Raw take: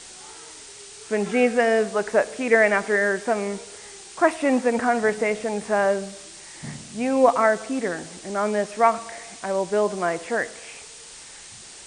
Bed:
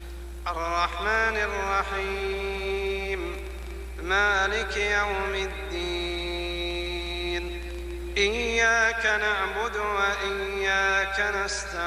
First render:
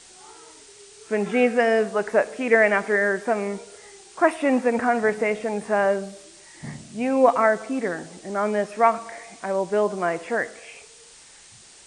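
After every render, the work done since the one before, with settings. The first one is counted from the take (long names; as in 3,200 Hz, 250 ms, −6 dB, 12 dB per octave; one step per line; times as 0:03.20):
noise reduction from a noise print 6 dB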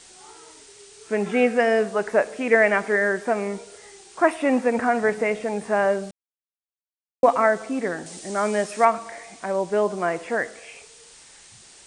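0:06.11–0:07.23: silence
0:08.06–0:08.85: high-shelf EQ 3,600 Hz +11 dB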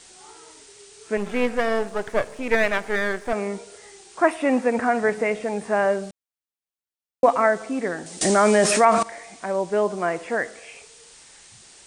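0:01.17–0:03.33: gain on one half-wave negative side −12 dB
0:08.21–0:09.03: envelope flattener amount 70%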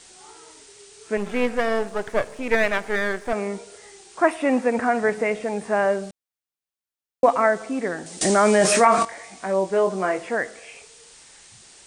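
0:08.59–0:10.29: double-tracking delay 21 ms −5 dB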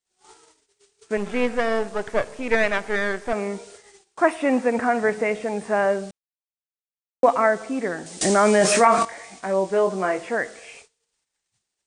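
low-pass filter 10,000 Hz 24 dB per octave
noise gate −44 dBFS, range −39 dB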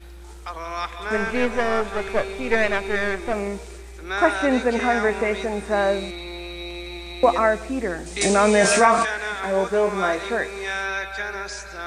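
mix in bed −3.5 dB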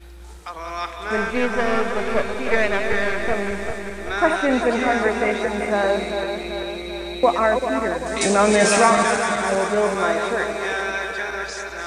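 feedback delay that plays each chunk backwards 195 ms, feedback 75%, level −7 dB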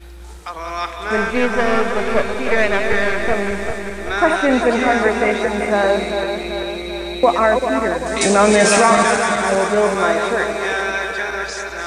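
level +4 dB
brickwall limiter −2 dBFS, peak gain reduction 3 dB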